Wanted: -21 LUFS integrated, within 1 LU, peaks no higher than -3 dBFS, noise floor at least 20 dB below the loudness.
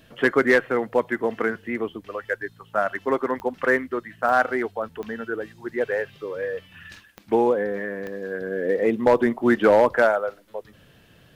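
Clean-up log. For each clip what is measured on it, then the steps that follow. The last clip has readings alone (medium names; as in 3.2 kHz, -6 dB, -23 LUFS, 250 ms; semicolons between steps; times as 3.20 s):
clicks found 5; loudness -23.5 LUFS; peak level -8.0 dBFS; loudness target -21.0 LUFS
-> de-click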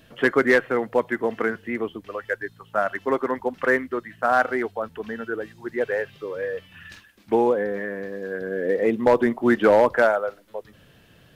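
clicks found 0; loudness -23.5 LUFS; peak level -8.0 dBFS; loudness target -21.0 LUFS
-> trim +2.5 dB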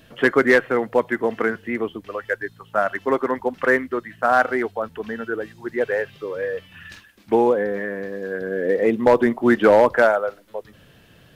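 loudness -21.0 LUFS; peak level -5.5 dBFS; noise floor -52 dBFS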